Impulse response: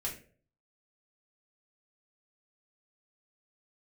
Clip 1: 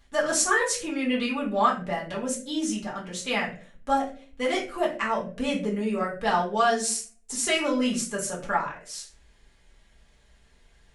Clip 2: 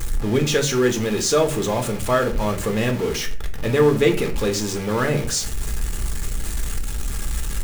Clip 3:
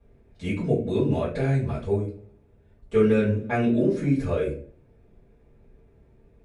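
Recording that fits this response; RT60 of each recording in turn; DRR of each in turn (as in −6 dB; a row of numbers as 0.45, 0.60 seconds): 1; 0.45, 0.45, 0.45 seconds; −4.5, 3.5, −10.5 decibels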